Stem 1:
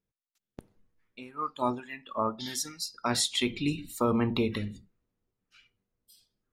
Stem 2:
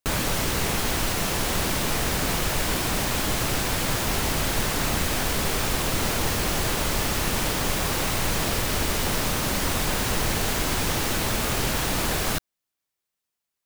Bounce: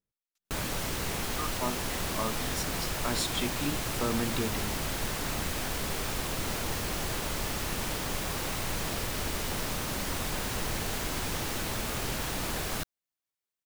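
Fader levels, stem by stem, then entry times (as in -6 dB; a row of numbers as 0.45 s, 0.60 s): -5.0 dB, -8.0 dB; 0.00 s, 0.45 s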